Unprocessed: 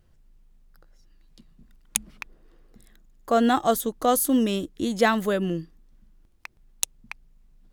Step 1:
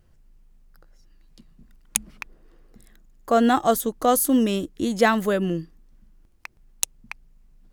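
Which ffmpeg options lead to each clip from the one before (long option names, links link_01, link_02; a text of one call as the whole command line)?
ffmpeg -i in.wav -af "equalizer=frequency=3600:width=3.3:gain=-3,volume=2dB" out.wav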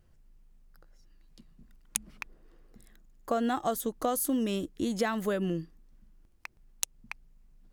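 ffmpeg -i in.wav -af "acompressor=threshold=-21dB:ratio=6,volume=-4.5dB" out.wav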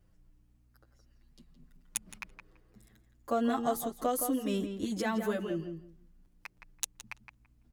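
ffmpeg -i in.wav -filter_complex "[0:a]aeval=exprs='val(0)+0.000398*(sin(2*PI*60*n/s)+sin(2*PI*2*60*n/s)/2+sin(2*PI*3*60*n/s)/3+sin(2*PI*4*60*n/s)/4+sin(2*PI*5*60*n/s)/5)':channel_layout=same,asplit=2[link_01][link_02];[link_02]adelay=167,lowpass=frequency=2400:poles=1,volume=-7dB,asplit=2[link_03][link_04];[link_04]adelay=167,lowpass=frequency=2400:poles=1,volume=0.18,asplit=2[link_05][link_06];[link_06]adelay=167,lowpass=frequency=2400:poles=1,volume=0.18[link_07];[link_03][link_05][link_07]amix=inputs=3:normalize=0[link_08];[link_01][link_08]amix=inputs=2:normalize=0,asplit=2[link_09][link_10];[link_10]adelay=7.7,afreqshift=0.45[link_11];[link_09][link_11]amix=inputs=2:normalize=1" out.wav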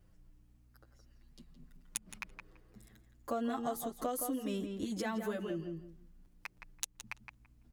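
ffmpeg -i in.wav -af "acompressor=threshold=-40dB:ratio=2,volume=1.5dB" out.wav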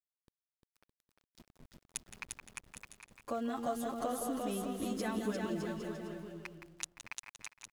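ffmpeg -i in.wav -af "lowpass=frequency=11000:width=0.5412,lowpass=frequency=11000:width=1.3066,aeval=exprs='val(0)*gte(abs(val(0)),0.00266)':channel_layout=same,aecho=1:1:350|612.5|809.4|957|1068:0.631|0.398|0.251|0.158|0.1,volume=-1.5dB" out.wav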